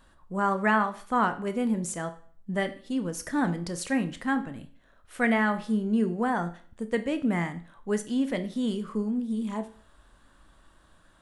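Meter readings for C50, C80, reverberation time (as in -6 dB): 14.0 dB, 18.5 dB, 0.50 s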